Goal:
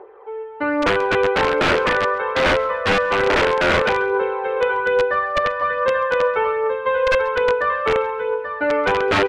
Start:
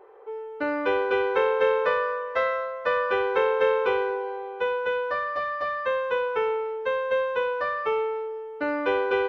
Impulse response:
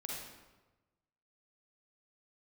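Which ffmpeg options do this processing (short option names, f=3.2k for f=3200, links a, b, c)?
-filter_complex "[0:a]aphaser=in_gain=1:out_gain=1:delay=1.9:decay=0.45:speed=1.2:type=triangular,highpass=f=45:w=0.5412,highpass=f=45:w=1.3066,asplit=2[a][b];[b]aecho=0:1:158|836:0.1|0.376[c];[a][c]amix=inputs=2:normalize=0,aeval=exprs='(mod(6.31*val(0)+1,2)-1)/6.31':c=same,lowpass=2.7k,asplit=2[d][e];[e]aecho=0:1:135|270:0.0841|0.0227[f];[d][f]amix=inputs=2:normalize=0,volume=6.5dB"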